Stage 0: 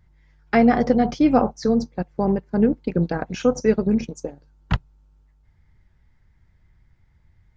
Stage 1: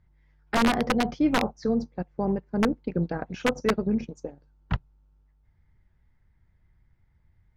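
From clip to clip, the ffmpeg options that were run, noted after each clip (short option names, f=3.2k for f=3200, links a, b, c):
-af "aeval=exprs='(mod(2.51*val(0)+1,2)-1)/2.51':c=same,aemphasis=mode=reproduction:type=50fm,volume=-6dB"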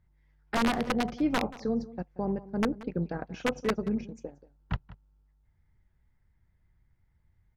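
-filter_complex "[0:a]asplit=2[a][b];[b]adelay=180.8,volume=-18dB,highshelf=f=4k:g=-4.07[c];[a][c]amix=inputs=2:normalize=0,volume=-4.5dB"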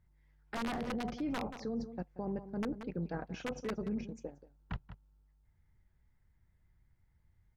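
-af "alimiter=level_in=4dB:limit=-24dB:level=0:latency=1:release=10,volume=-4dB,volume=-2dB"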